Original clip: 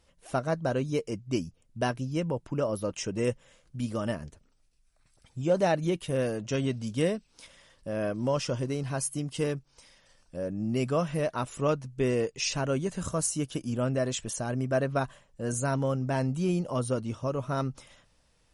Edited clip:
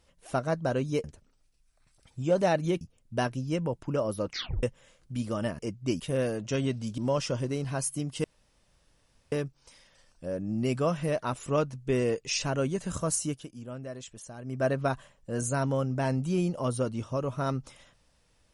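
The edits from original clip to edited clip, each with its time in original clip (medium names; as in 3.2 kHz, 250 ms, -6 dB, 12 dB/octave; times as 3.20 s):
1.04–1.45 s: swap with 4.23–6.00 s
2.91 s: tape stop 0.36 s
6.98–8.17 s: delete
9.43 s: insert room tone 1.08 s
13.36–14.76 s: dip -11.5 dB, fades 0.22 s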